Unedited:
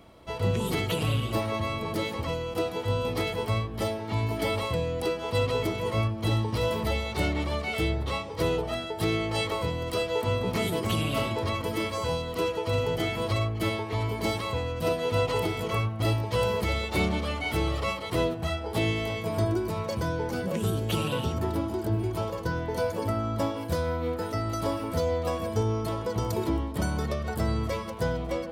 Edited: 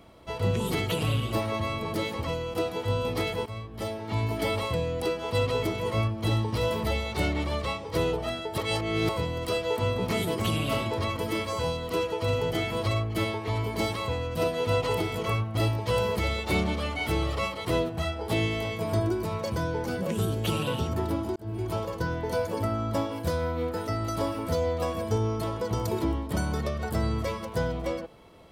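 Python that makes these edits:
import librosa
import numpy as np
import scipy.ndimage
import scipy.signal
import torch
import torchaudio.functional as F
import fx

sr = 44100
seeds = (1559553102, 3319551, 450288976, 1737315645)

y = fx.edit(x, sr, fx.fade_in_from(start_s=3.46, length_s=0.72, floor_db=-13.5),
    fx.cut(start_s=7.64, length_s=0.45),
    fx.reverse_span(start_s=9.03, length_s=0.51),
    fx.fade_in_span(start_s=21.81, length_s=0.32), tone=tone)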